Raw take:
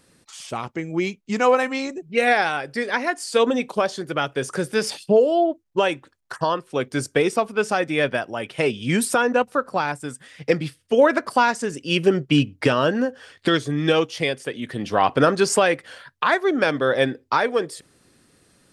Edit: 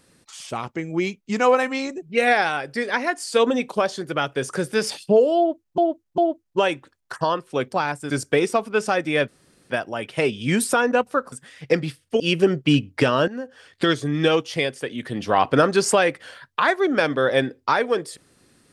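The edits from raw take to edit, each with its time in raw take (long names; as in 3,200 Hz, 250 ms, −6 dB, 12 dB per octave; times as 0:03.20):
0:05.38–0:05.78: repeat, 3 plays
0:08.11: splice in room tone 0.42 s
0:09.73–0:10.10: move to 0:06.93
0:10.98–0:11.84: remove
0:12.92–0:13.54: fade in, from −13.5 dB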